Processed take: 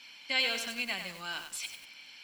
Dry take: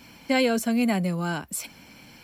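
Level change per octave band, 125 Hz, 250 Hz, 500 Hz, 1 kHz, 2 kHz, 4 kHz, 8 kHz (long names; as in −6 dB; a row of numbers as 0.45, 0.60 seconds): −25.5, −23.5, −16.5, −11.5, −2.0, +2.5, −7.0 decibels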